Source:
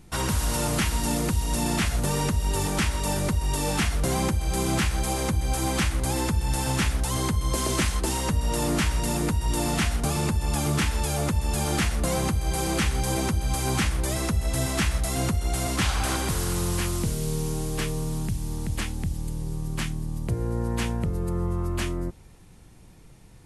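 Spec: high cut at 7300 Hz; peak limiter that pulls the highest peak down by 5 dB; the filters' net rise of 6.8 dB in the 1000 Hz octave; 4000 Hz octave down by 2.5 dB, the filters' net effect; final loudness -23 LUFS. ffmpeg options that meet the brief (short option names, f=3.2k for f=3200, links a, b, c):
-af "lowpass=7.3k,equalizer=f=1k:t=o:g=8.5,equalizer=f=4k:t=o:g=-3.5,volume=4dB,alimiter=limit=-12.5dB:level=0:latency=1"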